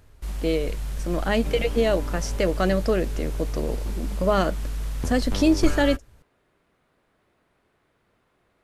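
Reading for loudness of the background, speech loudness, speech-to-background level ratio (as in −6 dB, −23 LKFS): −31.5 LKFS, −25.0 LKFS, 6.5 dB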